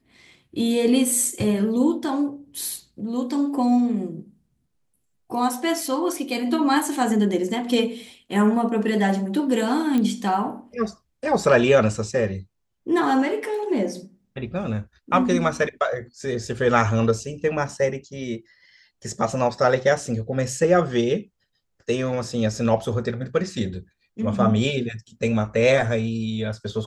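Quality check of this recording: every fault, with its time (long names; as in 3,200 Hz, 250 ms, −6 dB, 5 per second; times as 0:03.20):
0:09.98: click −13 dBFS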